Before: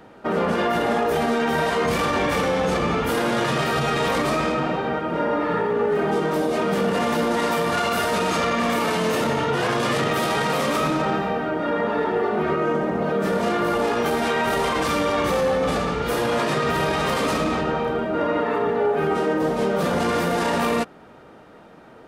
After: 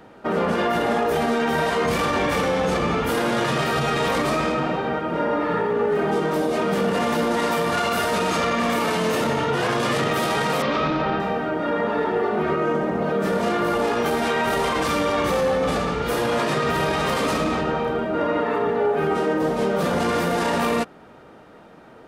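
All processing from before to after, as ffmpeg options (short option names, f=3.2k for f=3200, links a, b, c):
-filter_complex "[0:a]asettb=1/sr,asplit=3[a][b][c];[a]atrim=end=10.624[d];[b]atrim=start=10.62:end=11.2,asetpts=PTS-STARTPTS,afade=t=in:d=0.004:c=qsin,afade=t=out:st=0.576:d=0.004:c=qsin,lowpass=f=4.6k:w=0.5412,lowpass=f=4.6k:w=1.3066,asubboost=boost=9.5:cutoff=99[e];[c]atrim=start=11.196[f];[d][e]acrossfade=d=0.004:c1=hsin:c2=qsin[g];[g][f]acrossfade=d=0.004:c1=qsin:c2=hsin"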